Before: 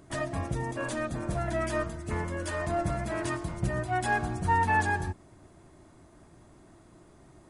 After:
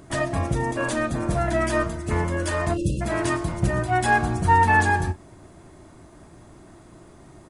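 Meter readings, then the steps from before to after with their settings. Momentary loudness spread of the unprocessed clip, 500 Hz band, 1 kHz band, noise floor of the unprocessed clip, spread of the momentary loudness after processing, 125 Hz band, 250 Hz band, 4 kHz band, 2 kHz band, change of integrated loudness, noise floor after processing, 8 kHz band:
8 LU, +7.0 dB, +7.5 dB, -56 dBFS, 7 LU, +7.5 dB, +8.0 dB, +7.5 dB, +7.5 dB, +7.5 dB, -49 dBFS, +7.5 dB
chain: spectral selection erased 2.73–3.01 s, 590–2500 Hz; doubling 35 ms -14 dB; trim +7.5 dB

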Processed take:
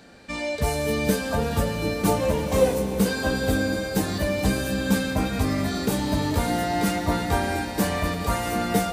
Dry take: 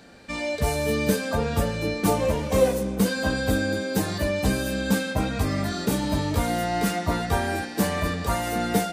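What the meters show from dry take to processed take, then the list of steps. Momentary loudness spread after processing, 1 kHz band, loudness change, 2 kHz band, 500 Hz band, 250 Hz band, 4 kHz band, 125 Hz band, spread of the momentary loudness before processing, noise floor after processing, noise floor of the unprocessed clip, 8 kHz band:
3 LU, +0.5 dB, +0.5 dB, 0.0 dB, +0.5 dB, +1.0 dB, +0.5 dB, +0.5 dB, 3 LU, -31 dBFS, -34 dBFS, +0.5 dB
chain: echo with a slow build-up 84 ms, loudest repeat 5, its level -18 dB

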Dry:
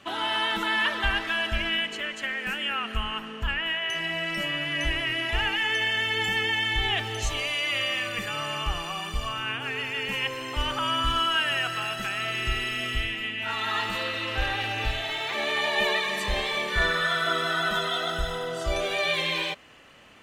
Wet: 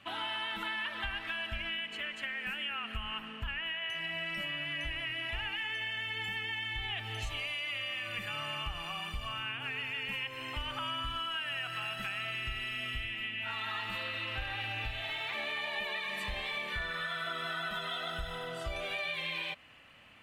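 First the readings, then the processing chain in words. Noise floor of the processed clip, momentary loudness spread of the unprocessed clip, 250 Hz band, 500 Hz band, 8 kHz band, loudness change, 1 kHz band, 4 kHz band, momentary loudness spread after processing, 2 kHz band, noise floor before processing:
-45 dBFS, 6 LU, -12.0 dB, -13.0 dB, -15.5 dB, -9.0 dB, -11.0 dB, -9.0 dB, 3 LU, -9.0 dB, -38 dBFS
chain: fifteen-band graphic EQ 100 Hz +4 dB, 400 Hz -7 dB, 2.5 kHz +5 dB, 6.3 kHz -8 dB; compression, threshold -27 dBFS, peak gain reduction 8.5 dB; trim -6.5 dB

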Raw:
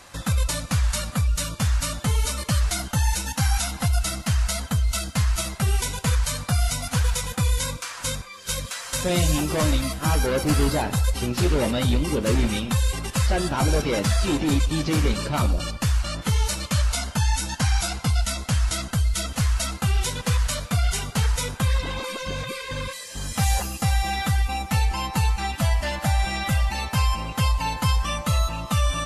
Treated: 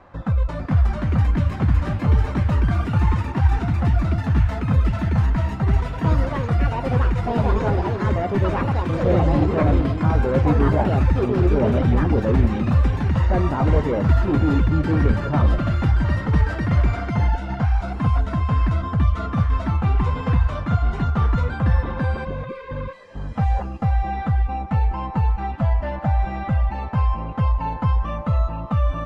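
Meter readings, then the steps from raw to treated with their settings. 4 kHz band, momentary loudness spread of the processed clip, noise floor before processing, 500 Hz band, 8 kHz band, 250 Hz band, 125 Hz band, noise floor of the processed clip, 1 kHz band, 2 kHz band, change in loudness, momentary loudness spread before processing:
-13.5 dB, 5 LU, -39 dBFS, +4.5 dB, under -25 dB, +5.0 dB, +5.0 dB, -30 dBFS, +3.0 dB, -2.0 dB, +3.5 dB, 3 LU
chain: low-pass 1.1 kHz 12 dB/octave; ever faster or slower copies 486 ms, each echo +5 st, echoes 2; trim +2.5 dB

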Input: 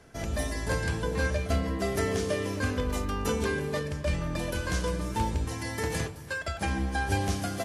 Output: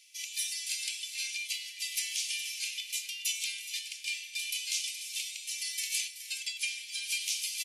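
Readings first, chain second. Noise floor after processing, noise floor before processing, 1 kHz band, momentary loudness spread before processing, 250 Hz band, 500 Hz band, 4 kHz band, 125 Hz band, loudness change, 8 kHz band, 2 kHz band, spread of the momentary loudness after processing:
-47 dBFS, -42 dBFS, under -40 dB, 4 LU, under -40 dB, under -40 dB, +7.0 dB, under -40 dB, -3.0 dB, +7.0 dB, -4.0 dB, 4 LU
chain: steep high-pass 2.3 kHz 72 dB/octave; delay 420 ms -12.5 dB; trim +7 dB

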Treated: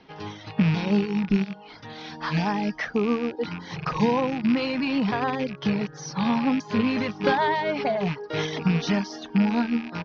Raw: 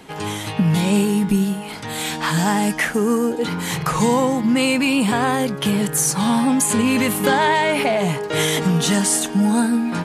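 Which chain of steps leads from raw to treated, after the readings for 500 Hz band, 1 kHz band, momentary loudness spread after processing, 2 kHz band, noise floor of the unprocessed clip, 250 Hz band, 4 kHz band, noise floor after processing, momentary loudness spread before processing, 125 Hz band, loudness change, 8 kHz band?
-6.0 dB, -6.5 dB, 9 LU, -8.0 dB, -30 dBFS, -6.0 dB, -10.0 dB, -45 dBFS, 6 LU, -6.0 dB, -6.5 dB, -24.0 dB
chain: rattle on loud lows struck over -24 dBFS, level -13 dBFS; steep low-pass 5.8 kHz 96 dB/octave; reverb removal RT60 0.59 s; dynamic bell 2.7 kHz, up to -6 dB, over -37 dBFS, Q 1.4; upward expansion 1.5:1, over -30 dBFS; trim -2 dB

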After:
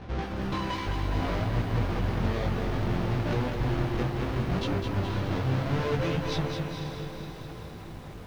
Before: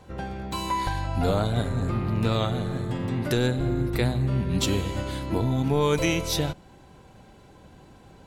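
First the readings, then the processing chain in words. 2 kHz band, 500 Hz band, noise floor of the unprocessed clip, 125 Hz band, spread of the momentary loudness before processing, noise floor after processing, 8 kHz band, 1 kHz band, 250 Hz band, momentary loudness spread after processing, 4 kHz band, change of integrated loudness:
-2.0 dB, -4.5 dB, -51 dBFS, -2.5 dB, 7 LU, -42 dBFS, under -10 dB, -3.0 dB, -3.5 dB, 11 LU, -6.0 dB, -3.5 dB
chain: square wave that keeps the level; reverb removal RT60 0.89 s; treble shelf 8.2 kHz -9 dB; band-stop 7.5 kHz, Q 5.3; compression 4:1, threshold -31 dBFS, peak gain reduction 12 dB; saturation -27.5 dBFS, distortion -19 dB; chorus 0.65 Hz, delay 17 ms, depth 5.6 ms; distance through air 120 m; echo that smears into a reverb 511 ms, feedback 49%, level -8 dB; bit-crushed delay 209 ms, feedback 55%, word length 10-bit, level -5.5 dB; trim +6.5 dB

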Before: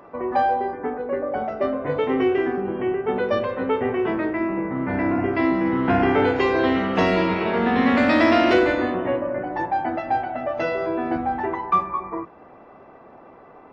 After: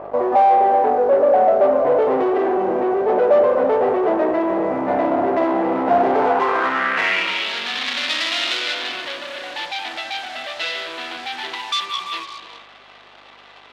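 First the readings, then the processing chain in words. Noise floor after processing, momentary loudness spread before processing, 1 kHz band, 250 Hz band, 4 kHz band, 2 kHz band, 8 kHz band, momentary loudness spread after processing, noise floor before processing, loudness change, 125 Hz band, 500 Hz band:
-46 dBFS, 9 LU, +5.0 dB, -3.5 dB, +12.0 dB, +2.5 dB, no reading, 13 LU, -47 dBFS, +3.0 dB, -10.5 dB, +4.5 dB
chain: hum 50 Hz, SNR 21 dB; gated-style reverb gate 420 ms rising, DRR 9.5 dB; waveshaping leveller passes 5; band-pass sweep 640 Hz -> 3.6 kHz, 6.13–7.50 s

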